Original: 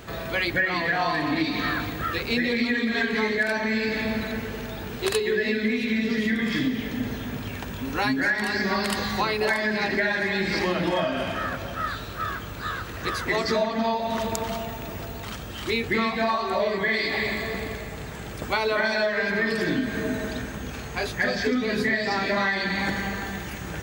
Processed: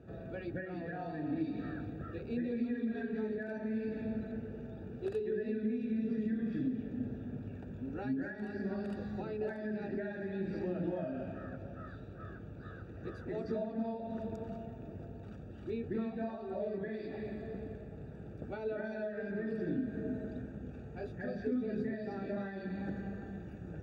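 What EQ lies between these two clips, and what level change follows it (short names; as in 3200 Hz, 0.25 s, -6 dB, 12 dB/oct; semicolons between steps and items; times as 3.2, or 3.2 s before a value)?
running mean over 42 samples; HPF 69 Hz; -8.0 dB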